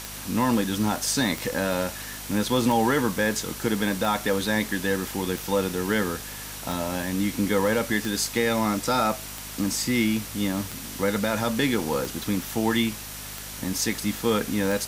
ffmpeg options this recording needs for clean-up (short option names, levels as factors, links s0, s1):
-af "adeclick=t=4,bandreject=f=51.1:t=h:w=4,bandreject=f=102.2:t=h:w=4,bandreject=f=153.3:t=h:w=4,bandreject=f=204.4:t=h:w=4,bandreject=f=255.5:t=h:w=4,bandreject=f=5800:w=30,afwtdn=0.014"